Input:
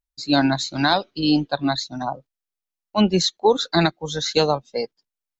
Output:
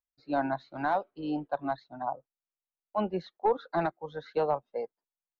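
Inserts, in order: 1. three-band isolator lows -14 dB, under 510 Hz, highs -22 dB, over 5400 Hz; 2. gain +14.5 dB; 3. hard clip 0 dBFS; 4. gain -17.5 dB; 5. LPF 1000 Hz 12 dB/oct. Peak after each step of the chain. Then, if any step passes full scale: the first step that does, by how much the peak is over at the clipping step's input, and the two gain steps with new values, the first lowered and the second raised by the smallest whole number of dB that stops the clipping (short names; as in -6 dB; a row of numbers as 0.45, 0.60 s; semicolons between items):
-6.0, +8.5, 0.0, -17.5, -17.0 dBFS; step 2, 8.5 dB; step 2 +5.5 dB, step 4 -8.5 dB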